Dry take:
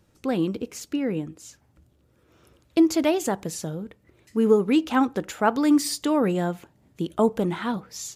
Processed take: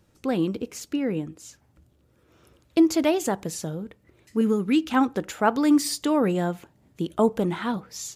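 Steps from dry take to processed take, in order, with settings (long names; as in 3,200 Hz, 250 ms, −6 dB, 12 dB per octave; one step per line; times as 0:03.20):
0:04.41–0:04.94: flat-topped bell 660 Hz −8.5 dB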